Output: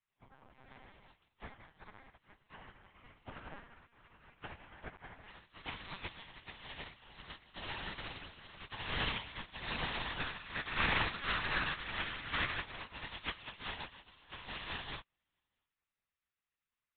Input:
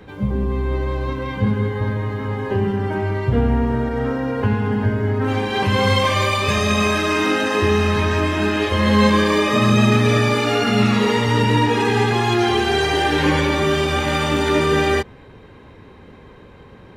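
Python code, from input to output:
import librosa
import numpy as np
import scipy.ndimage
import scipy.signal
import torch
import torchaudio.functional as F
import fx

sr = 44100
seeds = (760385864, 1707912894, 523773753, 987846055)

y = fx.spec_gate(x, sr, threshold_db=-20, keep='weak')
y = fx.peak_eq(y, sr, hz=1600.0, db=6.5, octaves=0.94, at=(10.18, 12.64))
y = fx.tube_stage(y, sr, drive_db=25.0, bias=0.8)
y = y + 10.0 ** (-21.0 / 20.0) * np.pad(y, (int(645 * sr / 1000.0), 0))[:len(y)]
y = fx.lpc_vocoder(y, sr, seeds[0], excitation='pitch_kept', order=8)
y = fx.upward_expand(y, sr, threshold_db=-52.0, expansion=2.5)
y = y * 10.0 ** (1.0 / 20.0)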